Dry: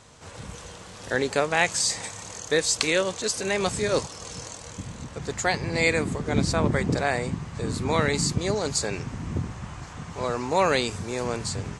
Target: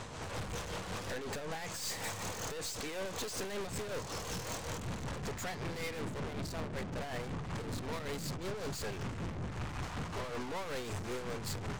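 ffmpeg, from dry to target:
ffmpeg -i in.wav -af "highshelf=frequency=4700:gain=-10,acompressor=threshold=-29dB:ratio=6,alimiter=limit=-24dB:level=0:latency=1:release=255,aeval=exprs='(tanh(282*val(0)+0.35)-tanh(0.35))/282':channel_layout=same,tremolo=f=5.3:d=0.45,volume=12.5dB" out.wav

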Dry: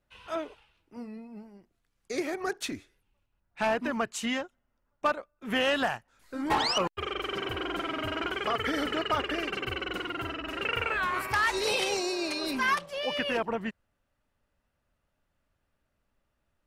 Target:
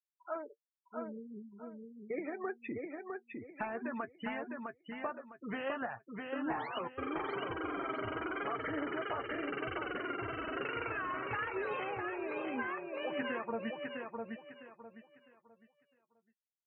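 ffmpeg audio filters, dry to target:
ffmpeg -i in.wav -filter_complex "[0:a]lowpass=frequency=2300:width=0.5412,lowpass=frequency=2300:width=1.3066,lowshelf=frequency=65:gain=-8,afftfilt=real='re*gte(hypot(re,im),0.0158)':imag='im*gte(hypot(re,im),0.0158)':win_size=1024:overlap=0.75,acompressor=threshold=-37dB:ratio=6,flanger=delay=6.1:depth=2.8:regen=40:speed=0.92:shape=triangular,asplit=2[link_01][link_02];[link_02]aecho=0:1:656|1312|1968|2624:0.631|0.183|0.0531|0.0154[link_03];[link_01][link_03]amix=inputs=2:normalize=0,volume=4.5dB" out.wav

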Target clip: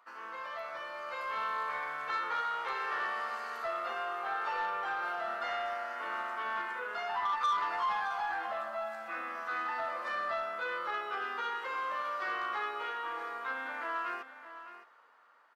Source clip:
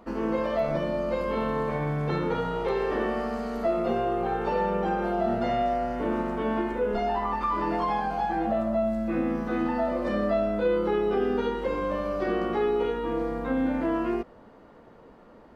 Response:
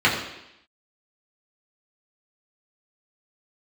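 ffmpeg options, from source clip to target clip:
-af "highpass=frequency=1300:width_type=q:width=2.2,asoftclip=type=tanh:threshold=-23dB,dynaudnorm=framelen=180:gausssize=11:maxgain=6dB,aecho=1:1:614:0.237,volume=-8.5dB"

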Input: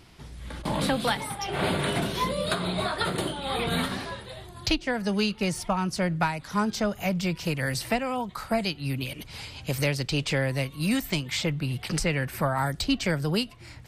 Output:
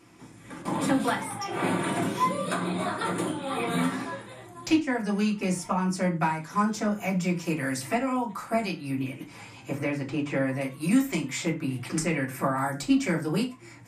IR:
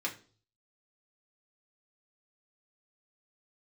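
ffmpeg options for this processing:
-filter_complex "[0:a]equalizer=frequency=250:width_type=o:width=1:gain=6,equalizer=frequency=1000:width_type=o:width=1:gain=4,equalizer=frequency=4000:width_type=o:width=1:gain=-9,equalizer=frequency=8000:width_type=o:width=1:gain=10,asettb=1/sr,asplit=3[link_01][link_02][link_03];[link_01]atrim=end=8.904[link_04];[link_02]atrim=start=8.9:end=10.61,asetpts=PTS-STARTPTS,afade=type=in:duration=0.004:curve=qsin,afade=type=out:start_time=1.706:duration=0.004:curve=qsin,acrossover=split=2600[link_05][link_06];[link_06]acompressor=threshold=-45dB:ratio=4:attack=1:release=60[link_07];[link_05][link_07]amix=inputs=2:normalize=0[link_08];[link_03]atrim=start=10.606[link_09];[link_04][link_08]acrossfade=duration=0.004:curve1=hsin:curve2=qsin[link_10];[link_10][link_09]acrossfade=duration=0.004:curve1=qsin:curve2=hsin[link_11];[1:a]atrim=start_sample=2205,afade=type=out:start_time=0.17:duration=0.01,atrim=end_sample=7938[link_12];[link_11][link_12]afir=irnorm=-1:irlink=0,volume=-5.5dB"

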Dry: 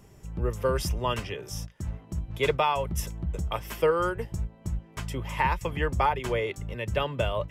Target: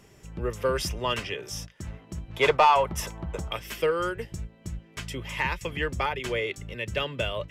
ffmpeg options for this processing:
ffmpeg -i in.wav -filter_complex "[0:a]asetnsamples=nb_out_samples=441:pad=0,asendcmd='2.37 equalizer g 4.5;3.51 equalizer g -12.5',equalizer=frequency=910:width_type=o:width=1.5:gain=-7,asplit=2[link_01][link_02];[link_02]highpass=frequency=720:poles=1,volume=13dB,asoftclip=type=tanh:threshold=-10dB[link_03];[link_01][link_03]amix=inputs=2:normalize=0,lowpass=frequency=3800:poles=1,volume=-6dB" out.wav

